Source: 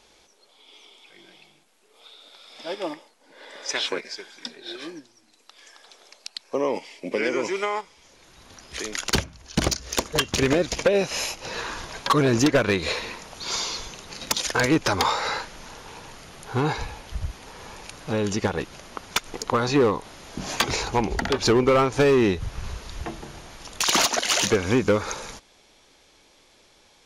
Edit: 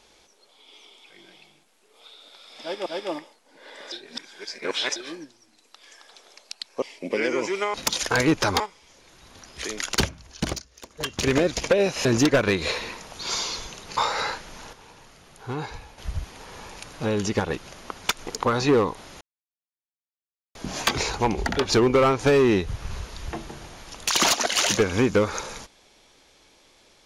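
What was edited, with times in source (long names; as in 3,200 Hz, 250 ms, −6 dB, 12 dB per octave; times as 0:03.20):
0:02.61–0:02.86: repeat, 2 plays
0:03.67–0:04.71: reverse
0:06.57–0:06.83: remove
0:09.40–0:10.48: duck −19.5 dB, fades 0.45 s
0:11.20–0:12.26: remove
0:14.18–0:15.04: move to 0:07.75
0:15.80–0:17.05: clip gain −7.5 dB
0:20.28: splice in silence 1.34 s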